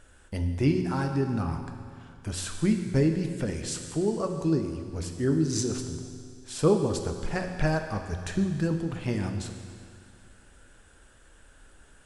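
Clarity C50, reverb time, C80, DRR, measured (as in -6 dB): 6.5 dB, 2.2 s, 7.5 dB, 4.5 dB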